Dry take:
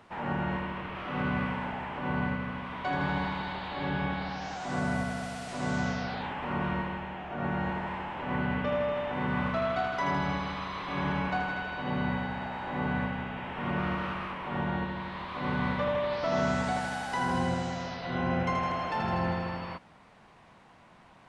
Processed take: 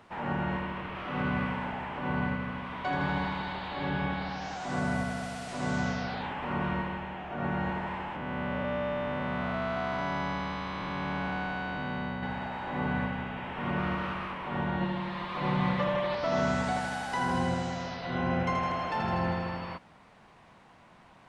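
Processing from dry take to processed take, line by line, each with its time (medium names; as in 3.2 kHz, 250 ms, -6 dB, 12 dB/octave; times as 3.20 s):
8.16–12.23 s: spectral blur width 479 ms
14.80–16.15 s: comb 5.7 ms, depth 83%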